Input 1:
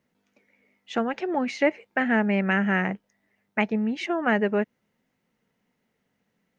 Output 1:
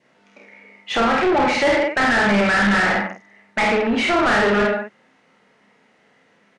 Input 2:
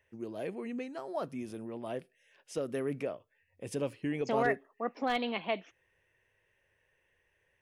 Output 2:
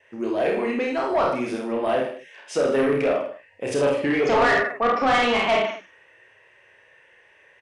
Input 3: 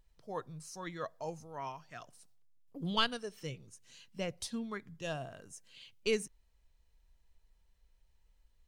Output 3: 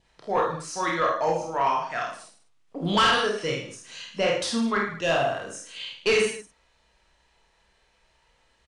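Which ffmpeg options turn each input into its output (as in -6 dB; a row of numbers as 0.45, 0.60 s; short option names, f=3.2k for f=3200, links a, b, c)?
-filter_complex "[0:a]adynamicequalizer=threshold=0.00501:dfrequency=1300:dqfactor=3.6:tfrequency=1300:tqfactor=3.6:attack=5:release=100:ratio=0.375:range=2.5:mode=boostabove:tftype=bell,asplit=2[a][b];[b]adelay=49,volume=-4dB[c];[a][c]amix=inputs=2:normalize=0,aecho=1:1:30|64.5|104.2|149.8|202.3:0.631|0.398|0.251|0.158|0.1,asplit=2[d][e];[e]highpass=f=720:p=1,volume=31dB,asoftclip=type=tanh:threshold=-3.5dB[f];[d][f]amix=inputs=2:normalize=0,lowpass=f=2.2k:p=1,volume=-6dB,aresample=22050,aresample=44100,volume=-5.5dB"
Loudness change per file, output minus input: +7.5, +13.5, +13.5 LU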